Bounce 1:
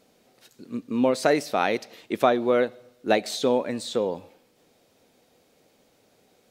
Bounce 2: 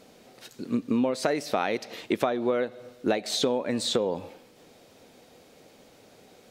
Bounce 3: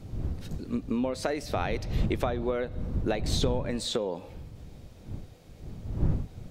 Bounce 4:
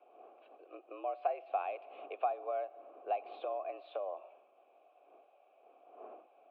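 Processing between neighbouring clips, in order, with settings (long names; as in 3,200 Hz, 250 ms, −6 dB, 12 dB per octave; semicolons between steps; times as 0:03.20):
high-shelf EQ 10,000 Hz −5.5 dB; downward compressor 10 to 1, threshold −30 dBFS, peak gain reduction 16 dB; level +8 dB
wind on the microphone 120 Hz −29 dBFS; level −4 dB
single-sideband voice off tune +80 Hz 290–3,100 Hz; formant filter a; level +1.5 dB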